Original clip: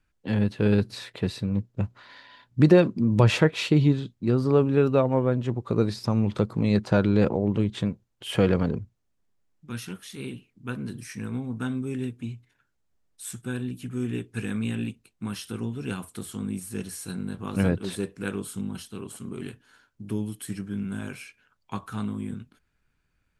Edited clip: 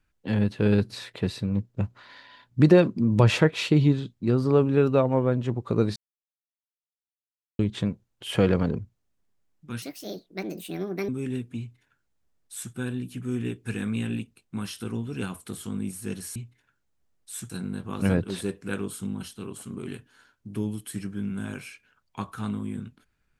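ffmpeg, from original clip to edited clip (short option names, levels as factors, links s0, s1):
-filter_complex "[0:a]asplit=7[s0][s1][s2][s3][s4][s5][s6];[s0]atrim=end=5.96,asetpts=PTS-STARTPTS,afade=t=out:st=5.956:d=0.004:c=hsin[s7];[s1]atrim=start=5.96:end=7.59,asetpts=PTS-STARTPTS,volume=0[s8];[s2]atrim=start=7.59:end=9.824,asetpts=PTS-STARTPTS,afade=t=in:d=0.004:c=hsin[s9];[s3]atrim=start=9.82:end=11.77,asetpts=PTS-STARTPTS,asetrate=67914,aresample=44100[s10];[s4]atrim=start=11.766:end=17.042[s11];[s5]atrim=start=12.268:end=13.412[s12];[s6]atrim=start=17.038[s13];[s7][s8][s9]concat=n=3:v=0:a=1[s14];[s14][s10]acrossfade=d=0.004:c1=hsin:c2=hsin[s15];[s15][s11]acrossfade=d=0.004:c1=hsin:c2=hsin[s16];[s16][s12]acrossfade=d=0.004:c1=hsin:c2=hsin[s17];[s17][s13]acrossfade=d=0.004:c1=hsin:c2=hsin"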